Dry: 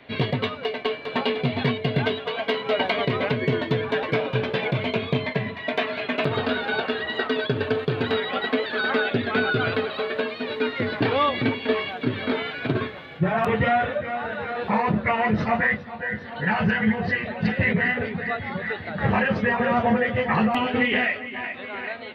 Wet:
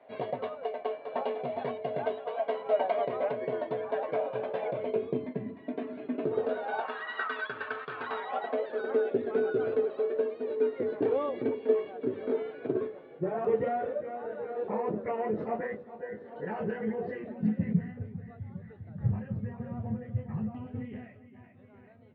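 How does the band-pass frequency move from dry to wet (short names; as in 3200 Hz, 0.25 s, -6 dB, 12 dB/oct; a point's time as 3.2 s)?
band-pass, Q 2.8
4.63 s 650 Hz
5.3 s 290 Hz
6.13 s 290 Hz
7.08 s 1300 Hz
7.92 s 1300 Hz
8.91 s 420 Hz
17.11 s 420 Hz
17.99 s 110 Hz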